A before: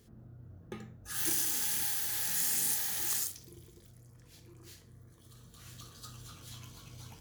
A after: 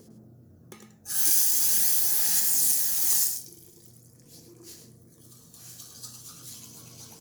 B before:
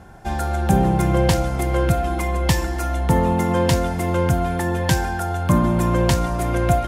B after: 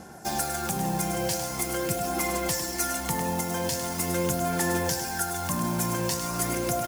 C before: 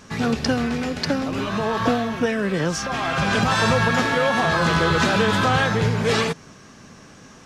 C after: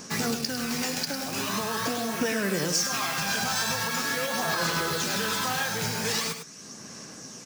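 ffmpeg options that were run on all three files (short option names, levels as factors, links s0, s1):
-filter_complex "[0:a]highpass=150,equalizer=f=4000:t=o:w=2.8:g=6.5,acrossover=split=760|1200[s0][s1][s2];[s0]acompressor=mode=upward:threshold=0.0158:ratio=2.5[s3];[s3][s1][s2]amix=inputs=3:normalize=0,alimiter=limit=0.168:level=0:latency=1:release=411,asplit=2[s4][s5];[s5]acrusher=bits=4:mix=0:aa=0.000001,volume=0.282[s6];[s4][s6]amix=inputs=2:normalize=0,aphaser=in_gain=1:out_gain=1:delay=1.3:decay=0.29:speed=0.43:type=sinusoidal,aexciter=amount=2.1:drive=9.3:freq=4800,flanger=delay=3.7:depth=5.9:regen=-76:speed=0.91:shape=triangular,aecho=1:1:103:0.398,volume=0.708"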